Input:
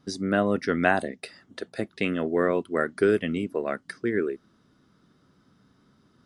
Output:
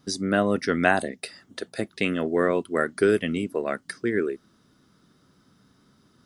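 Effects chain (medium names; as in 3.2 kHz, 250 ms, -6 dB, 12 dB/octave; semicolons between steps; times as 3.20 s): treble shelf 5.1 kHz +9.5 dB; trim +1 dB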